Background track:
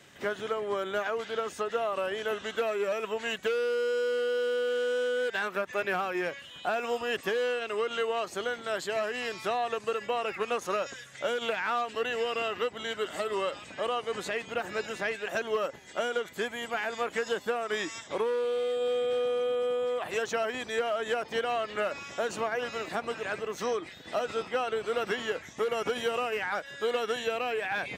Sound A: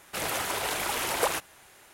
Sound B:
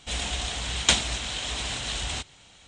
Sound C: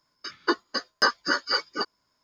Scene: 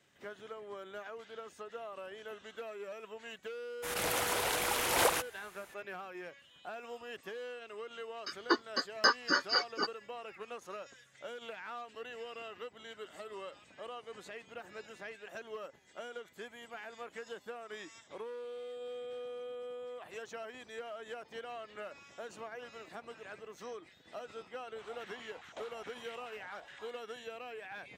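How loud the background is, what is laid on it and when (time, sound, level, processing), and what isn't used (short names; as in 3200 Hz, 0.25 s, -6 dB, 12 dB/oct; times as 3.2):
background track -14.5 dB
3.82 add A -3 dB, fades 0.02 s + backwards sustainer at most 48 dB/s
8.02 add C -5 dB
24.68 add B -9.5 dB + stepped band-pass 9.5 Hz 600–2000 Hz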